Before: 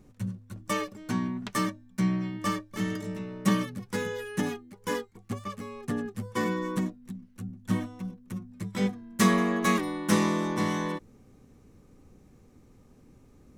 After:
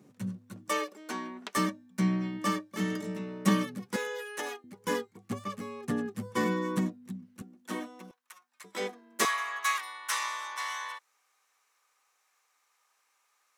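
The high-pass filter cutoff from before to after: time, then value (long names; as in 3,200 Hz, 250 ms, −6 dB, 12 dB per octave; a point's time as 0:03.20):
high-pass filter 24 dB per octave
140 Hz
from 0:00.69 330 Hz
from 0:01.57 160 Hz
from 0:03.96 460 Hz
from 0:04.64 120 Hz
from 0:07.42 300 Hz
from 0:08.11 920 Hz
from 0:08.64 350 Hz
from 0:09.25 1,000 Hz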